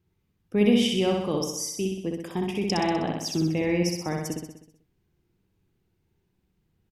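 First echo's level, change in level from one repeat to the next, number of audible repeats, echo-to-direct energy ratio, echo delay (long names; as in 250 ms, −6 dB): −3.0 dB, −5.0 dB, 7, −1.5 dB, 63 ms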